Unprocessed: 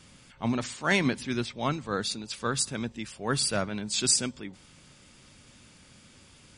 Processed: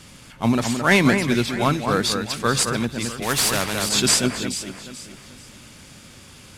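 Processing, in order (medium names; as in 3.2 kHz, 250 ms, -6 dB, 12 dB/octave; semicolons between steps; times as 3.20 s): CVSD coder 64 kbps; echo whose repeats swap between lows and highs 217 ms, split 2.5 kHz, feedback 56%, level -6 dB; 3.22–3.89 s: spectrum-flattening compressor 2:1; trim +9 dB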